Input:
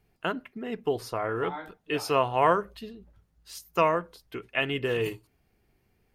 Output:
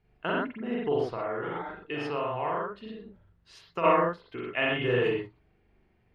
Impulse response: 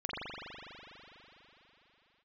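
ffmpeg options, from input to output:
-filter_complex "[0:a]lowpass=3500[s0];[1:a]atrim=start_sample=2205,atrim=end_sample=6174[s1];[s0][s1]afir=irnorm=-1:irlink=0,asplit=3[s2][s3][s4];[s2]afade=t=out:st=1.13:d=0.02[s5];[s3]acompressor=threshold=0.0282:ratio=3,afade=t=in:st=1.13:d=0.02,afade=t=out:st=3.83:d=0.02[s6];[s4]afade=t=in:st=3.83:d=0.02[s7];[s5][s6][s7]amix=inputs=3:normalize=0"

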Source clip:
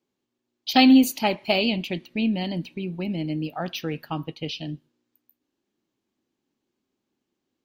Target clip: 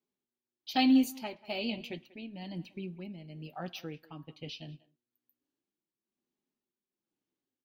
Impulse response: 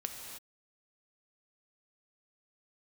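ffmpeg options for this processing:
-filter_complex "[0:a]tremolo=f=1.1:d=0.58,flanger=delay=4.8:depth=3.5:regen=-34:speed=0.31:shape=sinusoidal,asplit=2[s0][s1];[s1]adelay=190,highpass=300,lowpass=3400,asoftclip=type=hard:threshold=0.126,volume=0.112[s2];[s0][s2]amix=inputs=2:normalize=0,asplit=2[s3][s4];[1:a]atrim=start_sample=2205,atrim=end_sample=6174[s5];[s4][s5]afir=irnorm=-1:irlink=0,volume=0.119[s6];[s3][s6]amix=inputs=2:normalize=0,volume=0.422"

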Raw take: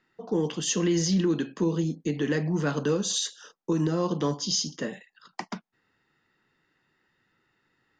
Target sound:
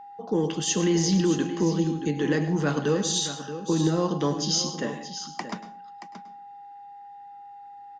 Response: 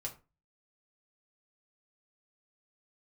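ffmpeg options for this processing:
-filter_complex "[0:a]aecho=1:1:627:0.266,asplit=2[s0][s1];[1:a]atrim=start_sample=2205,asetrate=26901,aresample=44100,adelay=102[s2];[s1][s2]afir=irnorm=-1:irlink=0,volume=0.2[s3];[s0][s3]amix=inputs=2:normalize=0,aeval=exprs='val(0)+0.00708*sin(2*PI*810*n/s)':c=same,volume=1.19"

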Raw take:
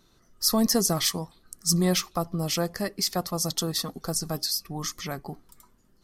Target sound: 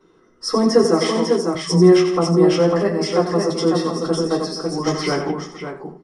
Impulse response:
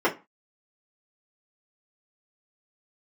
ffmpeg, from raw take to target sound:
-filter_complex "[0:a]equalizer=f=750:t=o:w=0.47:g=-4,aecho=1:1:91|165|256|550|630:0.376|0.188|0.224|0.631|0.178[s0];[1:a]atrim=start_sample=2205[s1];[s0][s1]afir=irnorm=-1:irlink=0,aresample=22050,aresample=44100,asettb=1/sr,asplit=3[s2][s3][s4];[s2]atrim=end=0.844[s5];[s3]atrim=start=0.84:end=1.55,asetpts=PTS-STARTPTS,afade=t=in:d=0.004:c=qsin,afade=t=out:st=0.706:d=0.004:c=qsin,highpass=200[s6];[s4]atrim=start=1.546[s7];[s5][s6]acrossfade=d=0.004:c1=hsin:c2=qsin[s8];[s8][s7]acrossfade=d=0.004:c1=qsin:c2=hsin,asplit=3[s9][s10][s11];[s9]afade=t=out:st=4.86:d=0.02[s12];[s10]acontrast=34,afade=t=in:st=4.86:d=0.02,afade=t=out:st=5.3:d=0.02[s13];[s11]afade=t=in:st=5.3:d=0.02[s14];[s12][s13][s14]amix=inputs=3:normalize=0,volume=0.447"

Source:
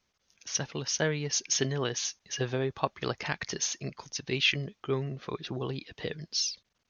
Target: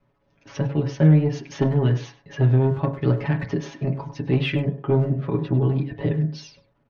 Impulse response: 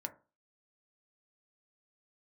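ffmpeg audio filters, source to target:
-filter_complex "[0:a]lowpass=2300,tiltshelf=f=1100:g=8,aecho=1:1:7.2:0.96,acrossover=split=410|1700[s0][s1][s2];[s1]acompressor=threshold=0.0112:ratio=6[s3];[s0][s3][s2]amix=inputs=3:normalize=0,asoftclip=type=tanh:threshold=0.158,asplit=2[s4][s5];[s5]adelay=100,highpass=300,lowpass=3400,asoftclip=type=hard:threshold=0.0447,volume=0.251[s6];[s4][s6]amix=inputs=2:normalize=0[s7];[1:a]atrim=start_sample=2205[s8];[s7][s8]afir=irnorm=-1:irlink=0,volume=2.51"

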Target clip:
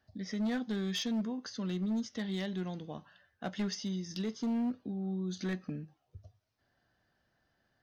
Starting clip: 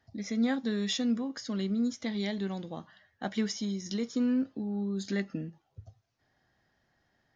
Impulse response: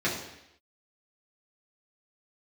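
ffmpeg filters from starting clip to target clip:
-af "acontrast=37,volume=10.6,asoftclip=hard,volume=0.0944,asetrate=41454,aresample=44100,volume=0.376"

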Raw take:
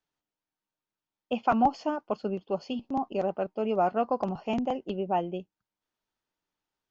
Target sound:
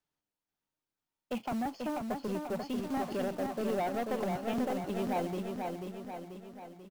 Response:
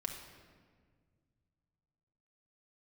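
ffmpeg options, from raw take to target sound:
-filter_complex "[0:a]asettb=1/sr,asplit=3[s0][s1][s2];[s0]atrim=end=2.784[s3];[s1]atrim=start=2.78:end=3.25,asetpts=PTS-STARTPTS,afade=t=in:d=0.004:c=qsin,afade=t=out:st=0.466:d=0.004:c=qsin,aeval=exprs='val(0)+0.5*0.00841*sgn(val(0))':c=same[s4];[s2]atrim=start=3.246[s5];[s3][s4]acrossfade=d=0.004:c1=hsin:c2=qsin[s6];[s6][s5]acrossfade=d=0.004:c1=qsin:c2=hsin,equalizer=f=120:t=o:w=2.8:g=3.5,asettb=1/sr,asplit=3[s7][s8][s9];[s7]atrim=end=1.404[s10];[s8]atrim=start=1.4:end=2.28,asetpts=PTS-STARTPTS,afade=t=in:d=0.004:c=qsin,afade=t=out:st=0.876:d=0.004:c=qsin,acrossover=split=430|1600[s11][s12][s13];[s11]acompressor=threshold=0.0447:ratio=4[s14];[s12]acompressor=threshold=0.0316:ratio=4[s15];[s13]acompressor=threshold=0.00251:ratio=4[s16];[s14][s15][s16]amix=inputs=3:normalize=0[s17];[s9]atrim=start=2.276[s18];[s10][s17]acrossfade=d=0.004:c1=hsin:c2=qsin[s19];[s19][s18]acrossfade=d=0.004:c1=qsin:c2=hsin,acrusher=bits=3:mode=log:mix=0:aa=0.000001,asoftclip=type=tanh:threshold=0.0501,asplit=2[s20][s21];[s21]aecho=0:1:488|976|1464|1952|2440|2928|3416:0.596|0.322|0.174|0.0938|0.0506|0.0274|0.0148[s22];[s20][s22]amix=inputs=2:normalize=0,volume=0.708"

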